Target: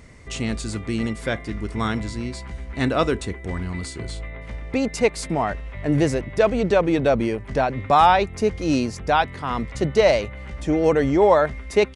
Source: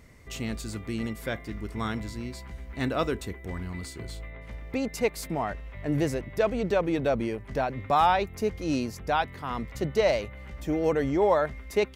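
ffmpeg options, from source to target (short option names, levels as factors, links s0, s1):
-af "aresample=22050,aresample=44100,volume=2.24"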